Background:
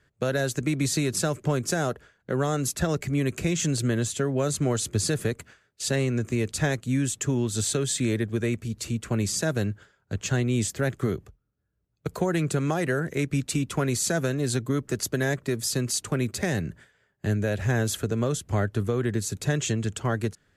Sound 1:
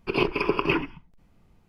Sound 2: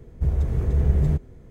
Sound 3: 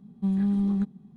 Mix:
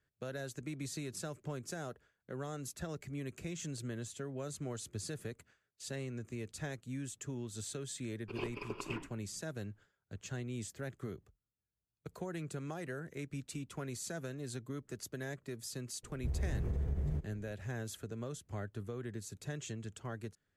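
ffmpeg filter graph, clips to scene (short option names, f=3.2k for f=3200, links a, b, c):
-filter_complex "[0:a]volume=-16.5dB[a];[1:a]aeval=exprs='if(lt(val(0),0),0.708*val(0),val(0))':c=same[b];[2:a]acompressor=threshold=-20dB:ratio=6:attack=3.2:release=140:knee=1:detection=peak[c];[b]atrim=end=1.68,asetpts=PTS-STARTPTS,volume=-17.5dB,afade=t=in:d=0.004:c=hsin,afade=t=out:st=1.676:d=0.004:c=hsin,adelay=8210[d];[c]atrim=end=1.5,asetpts=PTS-STARTPTS,volume=-10.5dB,afade=t=in:d=0.004:c=hsin,afade=t=out:st=1.496:d=0.004:c=hsin,adelay=16030[e];[a][d][e]amix=inputs=3:normalize=0"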